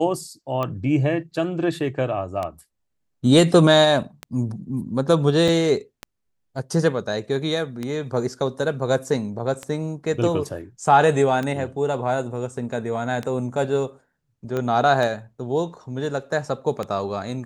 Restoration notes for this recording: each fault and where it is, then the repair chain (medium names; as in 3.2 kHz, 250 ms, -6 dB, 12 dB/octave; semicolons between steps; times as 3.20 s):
tick 33 1/3 rpm -14 dBFS
5.48 s: dropout 3.7 ms
14.57 s: pop -14 dBFS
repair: de-click; interpolate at 5.48 s, 3.7 ms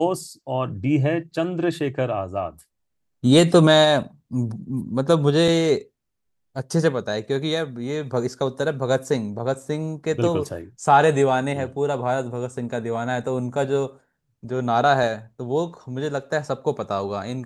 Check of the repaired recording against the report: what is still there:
14.57 s: pop